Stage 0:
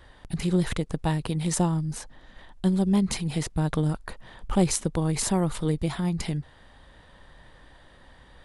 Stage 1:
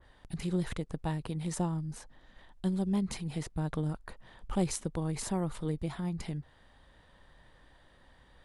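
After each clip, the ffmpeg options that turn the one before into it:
ffmpeg -i in.wav -af "adynamicequalizer=threshold=0.00398:dfrequency=2200:dqfactor=0.7:tfrequency=2200:tqfactor=0.7:attack=5:release=100:ratio=0.375:range=2:mode=cutabove:tftype=highshelf,volume=-8dB" out.wav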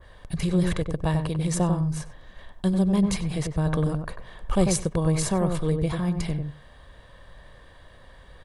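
ffmpeg -i in.wav -filter_complex "[0:a]aecho=1:1:1.8:0.39,asplit=2[link_01][link_02];[link_02]adelay=95,lowpass=frequency=920:poles=1,volume=-4dB,asplit=2[link_03][link_04];[link_04]adelay=95,lowpass=frequency=920:poles=1,volume=0.15,asplit=2[link_05][link_06];[link_06]adelay=95,lowpass=frequency=920:poles=1,volume=0.15[link_07];[link_03][link_05][link_07]amix=inputs=3:normalize=0[link_08];[link_01][link_08]amix=inputs=2:normalize=0,volume=8.5dB" out.wav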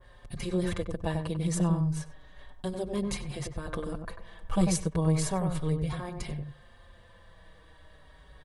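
ffmpeg -i in.wav -filter_complex "[0:a]asplit=2[link_01][link_02];[link_02]adelay=5.1,afreqshift=-0.33[link_03];[link_01][link_03]amix=inputs=2:normalize=1,volume=-2dB" out.wav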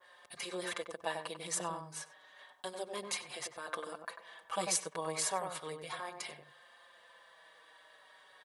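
ffmpeg -i in.wav -af "highpass=730,volume=1dB" out.wav

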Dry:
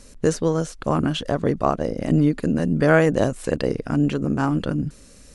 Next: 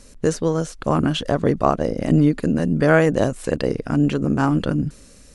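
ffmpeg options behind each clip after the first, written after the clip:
ffmpeg -i in.wav -af "dynaudnorm=framelen=320:gausssize=5:maxgain=4.5dB" out.wav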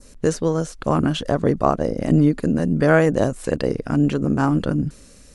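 ffmpeg -i in.wav -af "adynamicequalizer=threshold=0.01:dfrequency=2900:dqfactor=0.97:tfrequency=2900:tqfactor=0.97:attack=5:release=100:ratio=0.375:range=2.5:mode=cutabove:tftype=bell" out.wav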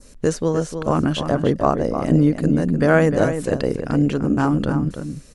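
ffmpeg -i in.wav -filter_complex "[0:a]asplit=2[link_01][link_02];[link_02]adelay=303.2,volume=-8dB,highshelf=frequency=4000:gain=-6.82[link_03];[link_01][link_03]amix=inputs=2:normalize=0" out.wav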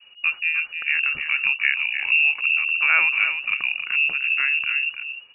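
ffmpeg -i in.wav -af "lowpass=frequency=2500:width_type=q:width=0.5098,lowpass=frequency=2500:width_type=q:width=0.6013,lowpass=frequency=2500:width_type=q:width=0.9,lowpass=frequency=2500:width_type=q:width=2.563,afreqshift=-2900,volume=-3.5dB" out.wav

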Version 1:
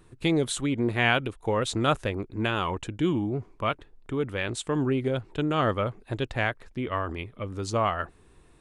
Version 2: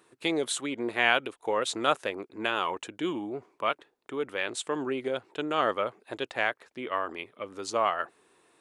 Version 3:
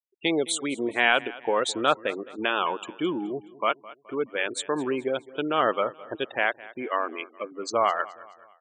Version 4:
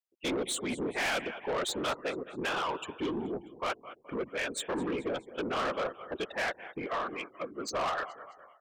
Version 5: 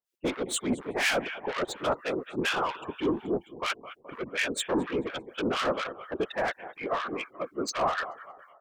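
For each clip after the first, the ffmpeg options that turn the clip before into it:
ffmpeg -i in.wav -af "highpass=400" out.wav
ffmpeg -i in.wav -af "acontrast=89,afftfilt=real='re*gte(hypot(re,im),0.0447)':imag='im*gte(hypot(re,im),0.0447)':win_size=1024:overlap=0.75,aecho=1:1:212|424|636:0.106|0.0477|0.0214,volume=-3.5dB" out.wav
ffmpeg -i in.wav -af "afftfilt=real='hypot(re,im)*cos(2*PI*random(0))':imag='hypot(re,im)*sin(2*PI*random(1))':win_size=512:overlap=0.75,asoftclip=type=tanh:threshold=-32dB,volume=4dB" out.wav
ffmpeg -i in.wav -filter_complex "[0:a]acrossover=split=1300[link_01][link_02];[link_01]aeval=exprs='val(0)*(1-1/2+1/2*cos(2*PI*4.2*n/s))':channel_layout=same[link_03];[link_02]aeval=exprs='val(0)*(1-1/2-1/2*cos(2*PI*4.2*n/s))':channel_layout=same[link_04];[link_03][link_04]amix=inputs=2:normalize=0,volume=8.5dB" out.wav

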